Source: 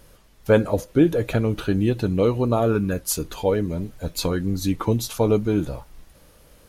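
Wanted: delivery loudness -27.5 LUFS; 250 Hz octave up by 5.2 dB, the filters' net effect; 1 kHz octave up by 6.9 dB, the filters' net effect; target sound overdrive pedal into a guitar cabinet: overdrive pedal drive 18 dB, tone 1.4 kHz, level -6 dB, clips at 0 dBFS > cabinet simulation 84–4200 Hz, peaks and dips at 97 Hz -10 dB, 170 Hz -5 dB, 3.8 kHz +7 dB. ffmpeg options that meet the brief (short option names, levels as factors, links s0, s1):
-filter_complex "[0:a]equalizer=f=250:t=o:g=7.5,equalizer=f=1000:t=o:g=8.5,asplit=2[s0][s1];[s1]highpass=f=720:p=1,volume=7.94,asoftclip=type=tanh:threshold=1[s2];[s0][s2]amix=inputs=2:normalize=0,lowpass=f=1400:p=1,volume=0.501,highpass=84,equalizer=f=97:t=q:w=4:g=-10,equalizer=f=170:t=q:w=4:g=-5,equalizer=f=3800:t=q:w=4:g=7,lowpass=f=4200:w=0.5412,lowpass=f=4200:w=1.3066,volume=0.251"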